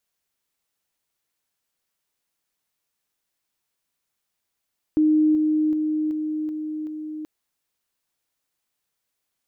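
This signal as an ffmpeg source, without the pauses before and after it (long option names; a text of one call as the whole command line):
ffmpeg -f lavfi -i "aevalsrc='pow(10,(-14.5-3*floor(t/0.38))/20)*sin(2*PI*308*t)':duration=2.28:sample_rate=44100" out.wav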